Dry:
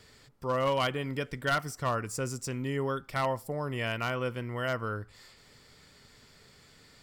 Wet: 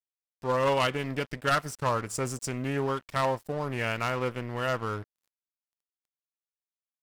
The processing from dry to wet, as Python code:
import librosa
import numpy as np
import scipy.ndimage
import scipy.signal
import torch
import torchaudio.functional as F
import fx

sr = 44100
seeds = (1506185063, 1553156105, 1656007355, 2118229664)

y = fx.dynamic_eq(x, sr, hz=8700.0, q=0.84, threshold_db=-49.0, ratio=4.0, max_db=3)
y = np.sign(y) * np.maximum(np.abs(y) - 10.0 ** (-45.5 / 20.0), 0.0)
y = fx.doppler_dist(y, sr, depth_ms=0.23)
y = y * librosa.db_to_amplitude(3.5)